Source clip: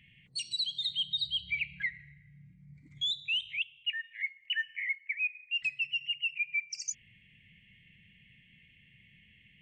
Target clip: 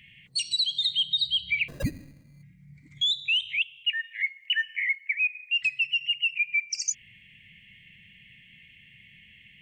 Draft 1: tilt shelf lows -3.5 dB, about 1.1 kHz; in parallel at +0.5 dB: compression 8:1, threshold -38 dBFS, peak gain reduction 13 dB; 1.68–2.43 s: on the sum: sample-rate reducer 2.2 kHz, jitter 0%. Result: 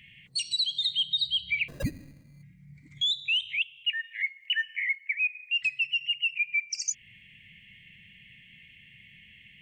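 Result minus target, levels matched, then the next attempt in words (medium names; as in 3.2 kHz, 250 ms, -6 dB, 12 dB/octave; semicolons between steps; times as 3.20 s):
compression: peak gain reduction +6 dB
tilt shelf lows -3.5 dB, about 1.1 kHz; in parallel at +0.5 dB: compression 8:1, threshold -31 dBFS, peak gain reduction 7 dB; 1.68–2.43 s: on the sum: sample-rate reducer 2.2 kHz, jitter 0%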